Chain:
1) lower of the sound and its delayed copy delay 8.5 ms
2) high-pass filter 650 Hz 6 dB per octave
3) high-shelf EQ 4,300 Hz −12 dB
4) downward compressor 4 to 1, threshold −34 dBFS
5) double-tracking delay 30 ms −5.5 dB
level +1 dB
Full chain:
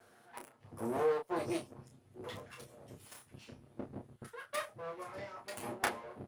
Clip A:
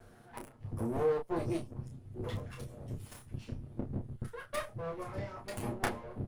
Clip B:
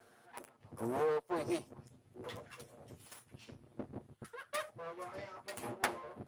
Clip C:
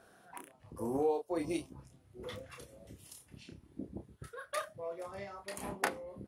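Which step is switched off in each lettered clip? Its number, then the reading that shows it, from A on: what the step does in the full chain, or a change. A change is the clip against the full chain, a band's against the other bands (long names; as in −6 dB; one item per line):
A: 2, 125 Hz band +13.5 dB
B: 5, change in integrated loudness −1.0 LU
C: 1, 250 Hz band +2.5 dB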